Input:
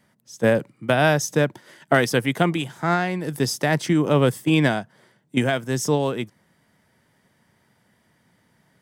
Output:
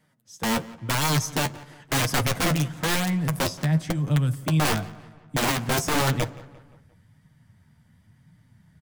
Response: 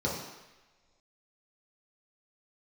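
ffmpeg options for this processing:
-filter_complex "[0:a]asubboost=boost=12:cutoff=120,asettb=1/sr,asplit=3[a][b][c];[a]atrim=end=3.464[d];[b]atrim=start=3.46:end=4.6,asetpts=PTS-STARTPTS,afade=t=in:d=0.004:c=qsin,afade=t=out:st=1.136:d=0.004:c=qsin,acrossover=split=180|5300[e][f][g];[e]acompressor=threshold=-24dB:ratio=4[h];[f]acompressor=threshold=-28dB:ratio=4[i];[g]acompressor=threshold=-43dB:ratio=4[j];[h][i][j]amix=inputs=3:normalize=0[k];[c]atrim=start=4.596[l];[d][k]acrossfade=d=0.004:c1=hsin:c2=qsin[m];[m][l]acrossfade=d=0.004:c1=qsin:c2=hsin,aeval=exprs='(mod(5.01*val(0)+1,2)-1)/5.01':c=same,flanger=delay=6.4:depth=6.9:regen=33:speed=0.96:shape=sinusoidal,asplit=2[n][o];[o]adelay=174,lowpass=f=3.2k:p=1,volume=-19.5dB,asplit=2[p][q];[q]adelay=174,lowpass=f=3.2k:p=1,volume=0.52,asplit=2[r][s];[s]adelay=174,lowpass=f=3.2k:p=1,volume=0.52,asplit=2[t][u];[u]adelay=174,lowpass=f=3.2k:p=1,volume=0.52[v];[n][p][r][t][v]amix=inputs=5:normalize=0,asplit=2[w][x];[1:a]atrim=start_sample=2205,asetrate=52920,aresample=44100[y];[x][y]afir=irnorm=-1:irlink=0,volume=-25.5dB[z];[w][z]amix=inputs=2:normalize=0"

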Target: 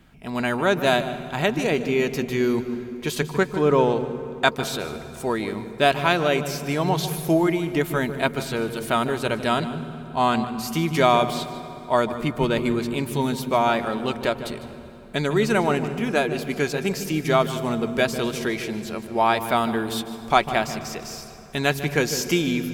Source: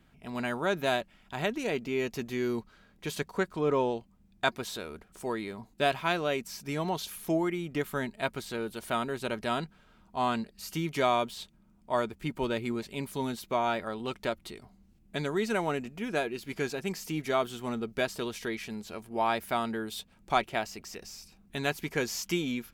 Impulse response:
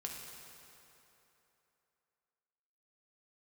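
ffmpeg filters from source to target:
-filter_complex "[0:a]asplit=2[a][b];[1:a]atrim=start_sample=2205,lowshelf=f=390:g=10.5,adelay=150[c];[b][c]afir=irnorm=-1:irlink=0,volume=-11.5dB[d];[a][d]amix=inputs=2:normalize=0,volume=8.5dB"

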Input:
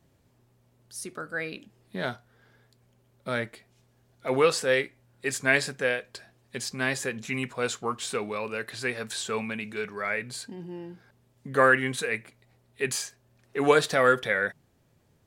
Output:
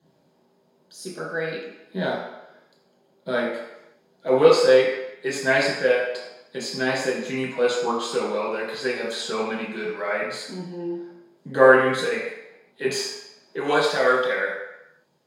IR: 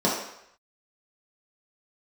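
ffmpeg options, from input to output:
-filter_complex "[0:a]asetnsamples=n=441:p=0,asendcmd='13.59 highpass f 1300',highpass=f=490:p=1[a];[1:a]atrim=start_sample=2205,asetrate=38367,aresample=44100[b];[a][b]afir=irnorm=-1:irlink=0,volume=-9.5dB"

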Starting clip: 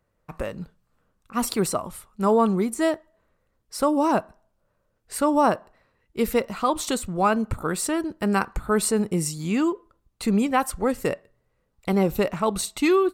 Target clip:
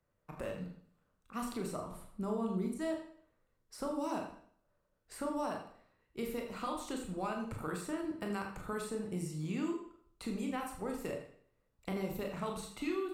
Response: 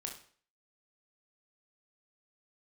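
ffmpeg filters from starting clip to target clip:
-filter_complex "[0:a]asettb=1/sr,asplit=3[a][b][c];[a]atrim=end=1.914[d];[b]atrim=start=1.91:end=2.79,asetpts=PTS-STARTPTS,afade=t=in:d=0.004:c=qsin,afade=t=out:st=0.876:d=0.004:c=qsin,tiltshelf=f=970:g=8[e];[c]atrim=start=2.786[f];[d][e]acrossfade=d=0.004:c1=hsin:c2=qsin[g];[g][f]acrossfade=d=0.004:c1=qsin:c2=hsin,acrossover=split=100|2400[h][i][j];[h]acompressor=threshold=-44dB:ratio=4[k];[i]acompressor=threshold=-29dB:ratio=4[l];[j]acompressor=threshold=-43dB:ratio=4[m];[k][l][m]amix=inputs=3:normalize=0[n];[1:a]atrim=start_sample=2205,asetrate=35721,aresample=44100[o];[n][o]afir=irnorm=-1:irlink=0,volume=-7dB"

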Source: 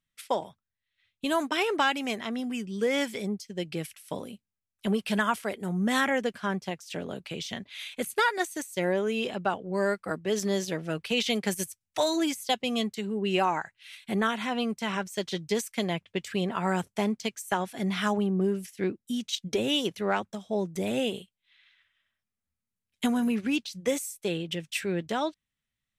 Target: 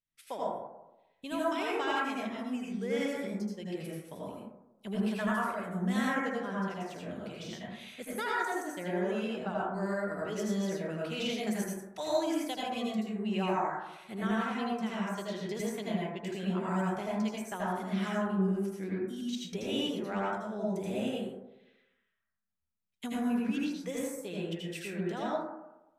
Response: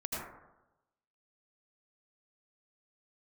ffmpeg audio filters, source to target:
-filter_complex "[1:a]atrim=start_sample=2205[a];[0:a][a]afir=irnorm=-1:irlink=0,volume=-9dB"

